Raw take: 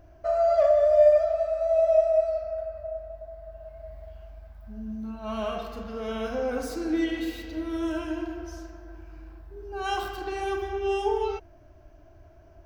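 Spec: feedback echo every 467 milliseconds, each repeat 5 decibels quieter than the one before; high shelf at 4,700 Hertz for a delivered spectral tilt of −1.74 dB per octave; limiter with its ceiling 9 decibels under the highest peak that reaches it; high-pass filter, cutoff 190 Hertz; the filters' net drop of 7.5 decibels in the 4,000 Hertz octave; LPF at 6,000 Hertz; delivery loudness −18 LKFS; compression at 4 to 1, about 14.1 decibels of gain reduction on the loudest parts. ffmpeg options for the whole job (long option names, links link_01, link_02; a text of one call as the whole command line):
ffmpeg -i in.wav -af "highpass=190,lowpass=6000,equalizer=frequency=4000:width_type=o:gain=-8.5,highshelf=frequency=4700:gain=-4.5,acompressor=threshold=-32dB:ratio=4,alimiter=level_in=8dB:limit=-24dB:level=0:latency=1,volume=-8dB,aecho=1:1:467|934|1401|1868|2335|2802|3269:0.562|0.315|0.176|0.0988|0.0553|0.031|0.0173,volume=20.5dB" out.wav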